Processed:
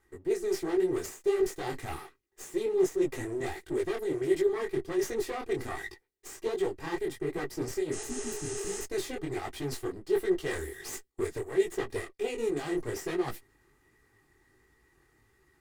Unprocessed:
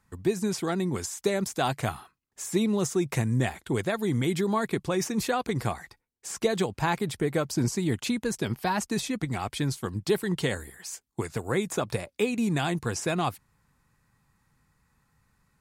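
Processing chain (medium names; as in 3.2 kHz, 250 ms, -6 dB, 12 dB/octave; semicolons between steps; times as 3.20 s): comb filter that takes the minimum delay 2.5 ms; spectral replace 7.95–8.77 s, 330–10000 Hz after; reverse; compression 10:1, threshold -36 dBFS, peak gain reduction 17 dB; reverse; small resonant body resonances 380/1900 Hz, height 13 dB, ringing for 40 ms; detune thickener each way 47 cents; trim +5 dB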